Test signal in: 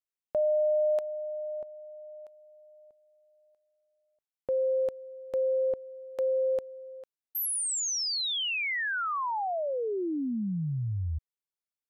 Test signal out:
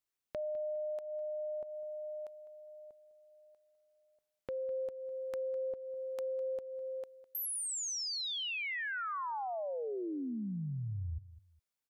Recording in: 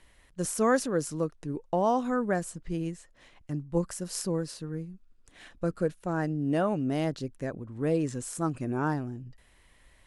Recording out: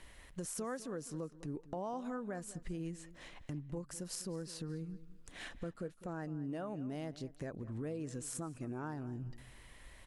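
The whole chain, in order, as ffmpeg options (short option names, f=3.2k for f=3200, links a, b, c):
-filter_complex "[0:a]acompressor=threshold=-40dB:ratio=8:attack=2.3:release=239:detection=rms,asplit=2[a][b];[b]adelay=204,lowpass=f=4.2k:p=1,volume=-16dB,asplit=2[c][d];[d]adelay=204,lowpass=f=4.2k:p=1,volume=0.25[e];[a][c][e]amix=inputs=3:normalize=0,volume=3.5dB"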